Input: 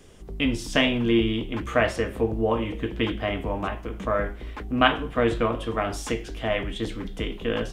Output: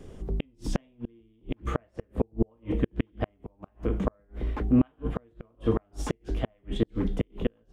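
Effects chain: flipped gate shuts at -17 dBFS, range -42 dB; tilt shelf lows +7 dB, about 1100 Hz

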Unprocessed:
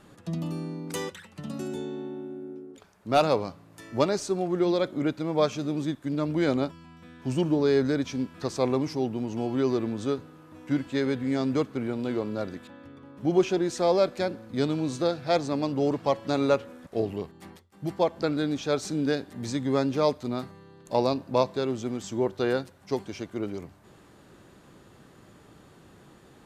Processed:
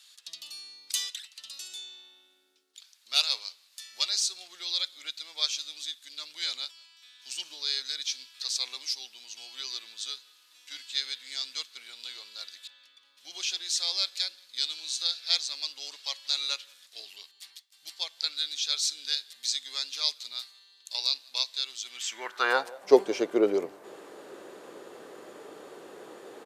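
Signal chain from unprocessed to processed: speakerphone echo 0.18 s, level -24 dB; high-pass sweep 4000 Hz -> 440 Hz, 21.81–22.94; gain +6 dB

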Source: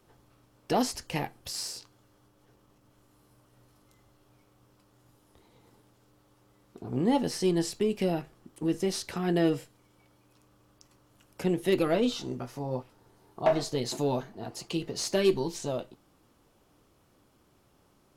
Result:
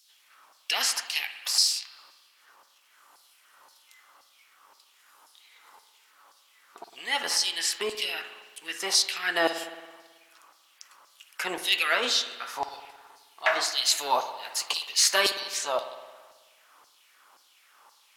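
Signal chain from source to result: LFO high-pass saw down 1.9 Hz 840–5000 Hz; 13.77–15.4 high shelf 6800 Hz +6 dB; spring tank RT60 1.4 s, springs 54 ms, chirp 25 ms, DRR 9 dB; gain +9 dB

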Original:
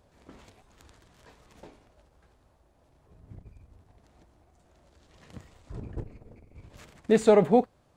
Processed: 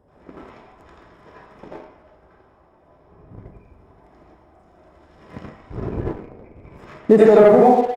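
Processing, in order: 3.33–5.37 high shelf 8100 Hz +7 dB; echo 0.105 s -15 dB; reverb RT60 0.60 s, pre-delay 78 ms, DRR -9.5 dB; sample leveller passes 1; compressor 12:1, threshold -2 dBFS, peak gain reduction 10 dB; gain -5 dB

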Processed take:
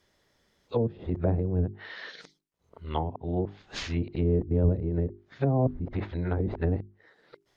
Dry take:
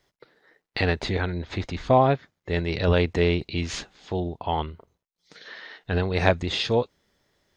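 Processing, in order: whole clip reversed; notches 50/100/150/200/250/300/350/400 Hz; treble ducked by the level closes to 340 Hz, closed at -21.5 dBFS

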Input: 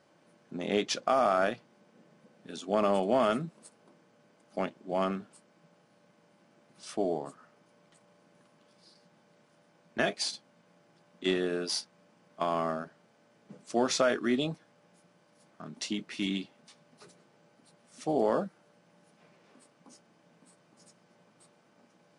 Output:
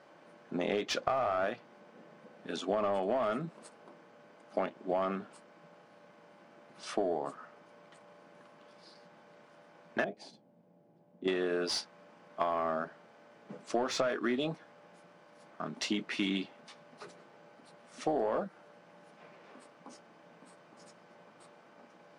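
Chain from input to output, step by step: 10.04–11.28 EQ curve 190 Hz 0 dB, 810 Hz -10 dB, 1200 Hz -22 dB; overdrive pedal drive 14 dB, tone 1400 Hz, clips at -13 dBFS; compressor 12:1, threshold -30 dBFS, peak gain reduction 11 dB; gain +2.5 dB

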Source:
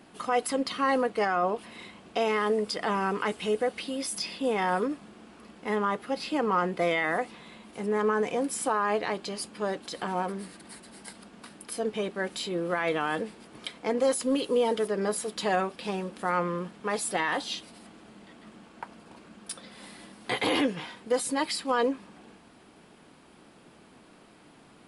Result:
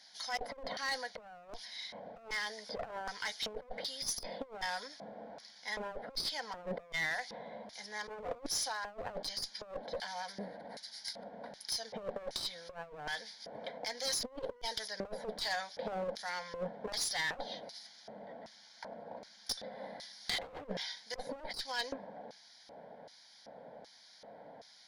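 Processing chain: fixed phaser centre 1800 Hz, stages 8; LFO band-pass square 1.3 Hz 520–5700 Hz; one-sided clip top -47 dBFS, bottom -28.5 dBFS; negative-ratio compressor -48 dBFS, ratio -0.5; gain +9.5 dB

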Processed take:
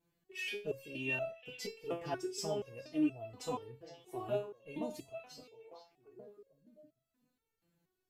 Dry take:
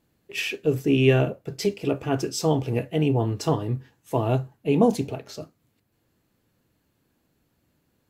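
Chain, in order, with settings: delay with a stepping band-pass 0.46 s, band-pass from 3400 Hz, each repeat -1.4 oct, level -9 dB; stepped resonator 4.2 Hz 170–660 Hz; gain +1 dB

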